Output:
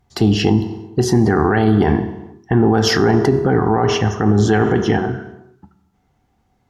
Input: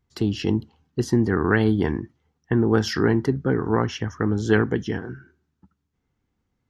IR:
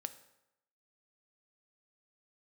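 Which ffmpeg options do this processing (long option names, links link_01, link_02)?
-filter_complex "[0:a]equalizer=frequency=760:width=5.1:gain=14.5[link_01];[1:a]atrim=start_sample=2205,afade=type=out:start_time=0.39:duration=0.01,atrim=end_sample=17640,asetrate=32634,aresample=44100[link_02];[link_01][link_02]afir=irnorm=-1:irlink=0,alimiter=level_in=15.5dB:limit=-1dB:release=50:level=0:latency=1,volume=-3.5dB"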